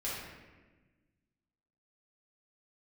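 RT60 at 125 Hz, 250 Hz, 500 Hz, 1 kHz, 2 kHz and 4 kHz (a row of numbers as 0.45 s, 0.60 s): 1.9 s, 1.9 s, 1.4 s, 1.1 s, 1.2 s, 0.85 s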